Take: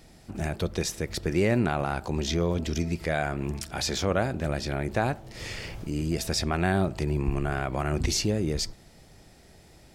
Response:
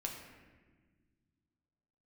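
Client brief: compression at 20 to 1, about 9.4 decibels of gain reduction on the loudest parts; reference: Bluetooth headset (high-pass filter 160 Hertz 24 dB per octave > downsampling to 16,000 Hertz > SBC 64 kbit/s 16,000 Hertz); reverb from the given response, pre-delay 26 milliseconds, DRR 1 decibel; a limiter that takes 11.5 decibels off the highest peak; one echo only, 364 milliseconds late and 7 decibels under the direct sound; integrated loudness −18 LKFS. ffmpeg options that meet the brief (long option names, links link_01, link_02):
-filter_complex "[0:a]acompressor=threshold=-29dB:ratio=20,alimiter=level_in=5dB:limit=-24dB:level=0:latency=1,volume=-5dB,aecho=1:1:364:0.447,asplit=2[link_01][link_02];[1:a]atrim=start_sample=2205,adelay=26[link_03];[link_02][link_03]afir=irnorm=-1:irlink=0,volume=-1dB[link_04];[link_01][link_04]amix=inputs=2:normalize=0,highpass=frequency=160:width=0.5412,highpass=frequency=160:width=1.3066,aresample=16000,aresample=44100,volume=20dB" -ar 16000 -c:a sbc -b:a 64k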